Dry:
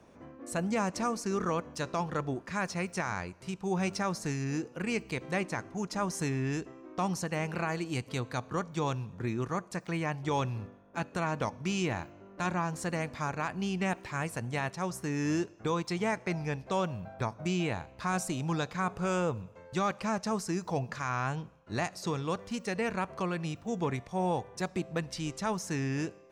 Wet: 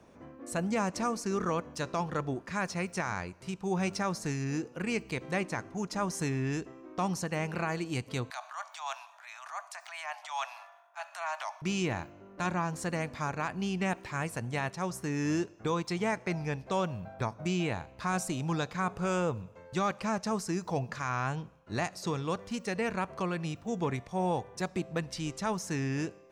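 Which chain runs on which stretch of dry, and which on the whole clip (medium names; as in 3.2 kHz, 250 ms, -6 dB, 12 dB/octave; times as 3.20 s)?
8.30–11.62 s: steep high-pass 640 Hz 96 dB/octave + transient shaper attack -7 dB, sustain +7 dB
whole clip: none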